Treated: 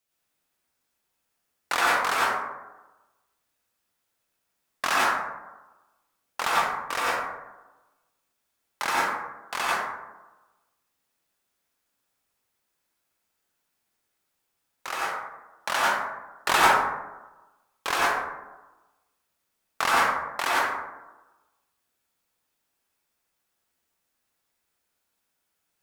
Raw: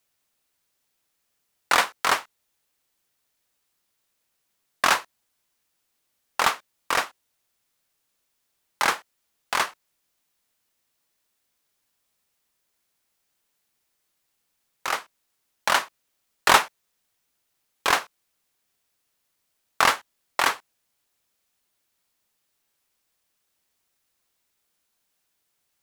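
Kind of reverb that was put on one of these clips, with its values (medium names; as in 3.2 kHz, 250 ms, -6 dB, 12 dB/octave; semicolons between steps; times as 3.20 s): plate-style reverb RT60 1.1 s, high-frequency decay 0.35×, pre-delay 80 ms, DRR -6.5 dB; trim -7.5 dB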